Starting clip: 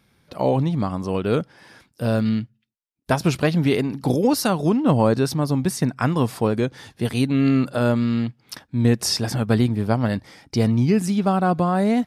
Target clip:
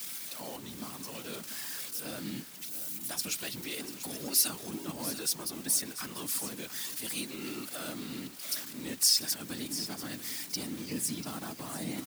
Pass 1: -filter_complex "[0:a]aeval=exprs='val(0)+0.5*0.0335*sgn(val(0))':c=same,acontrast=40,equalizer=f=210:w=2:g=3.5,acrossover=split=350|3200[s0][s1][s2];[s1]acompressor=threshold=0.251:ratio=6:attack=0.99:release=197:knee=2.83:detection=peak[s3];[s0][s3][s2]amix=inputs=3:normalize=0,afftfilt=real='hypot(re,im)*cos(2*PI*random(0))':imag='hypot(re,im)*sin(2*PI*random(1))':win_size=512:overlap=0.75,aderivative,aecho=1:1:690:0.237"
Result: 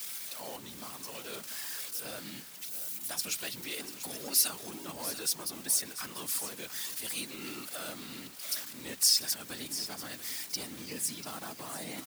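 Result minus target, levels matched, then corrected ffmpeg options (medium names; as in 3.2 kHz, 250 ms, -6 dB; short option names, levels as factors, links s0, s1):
250 Hz band -6.0 dB
-filter_complex "[0:a]aeval=exprs='val(0)+0.5*0.0335*sgn(val(0))':c=same,acontrast=40,equalizer=f=210:w=2:g=12.5,acrossover=split=350|3200[s0][s1][s2];[s1]acompressor=threshold=0.251:ratio=6:attack=0.99:release=197:knee=2.83:detection=peak[s3];[s0][s3][s2]amix=inputs=3:normalize=0,afftfilt=real='hypot(re,im)*cos(2*PI*random(0))':imag='hypot(re,im)*sin(2*PI*random(1))':win_size=512:overlap=0.75,aderivative,aecho=1:1:690:0.237"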